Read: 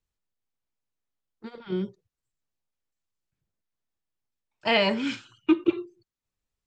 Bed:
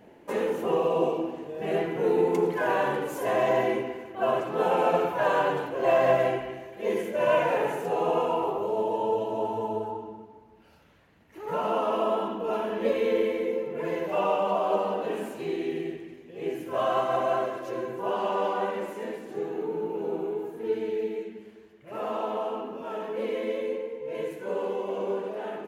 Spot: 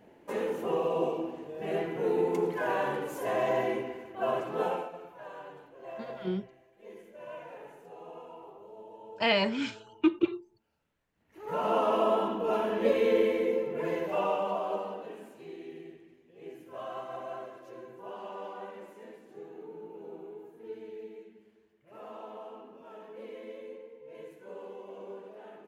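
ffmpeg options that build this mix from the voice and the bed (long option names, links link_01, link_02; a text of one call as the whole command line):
ffmpeg -i stem1.wav -i stem2.wav -filter_complex "[0:a]adelay=4550,volume=-3.5dB[link_01];[1:a]volume=16.5dB,afade=type=out:start_time=4.63:duration=0.26:silence=0.149624,afade=type=in:start_time=11.13:duration=0.63:silence=0.0891251,afade=type=out:start_time=13.54:duration=1.62:silence=0.199526[link_02];[link_01][link_02]amix=inputs=2:normalize=0" out.wav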